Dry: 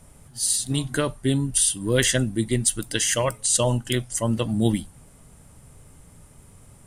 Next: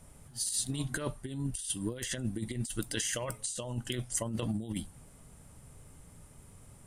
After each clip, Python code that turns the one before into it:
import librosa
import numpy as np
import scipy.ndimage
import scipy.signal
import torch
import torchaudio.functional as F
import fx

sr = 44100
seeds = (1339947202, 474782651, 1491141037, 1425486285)

y = fx.over_compress(x, sr, threshold_db=-25.0, ratio=-0.5)
y = y * 10.0 ** (-8.5 / 20.0)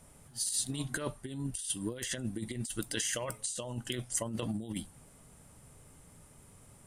y = fx.low_shelf(x, sr, hz=120.0, db=-7.0)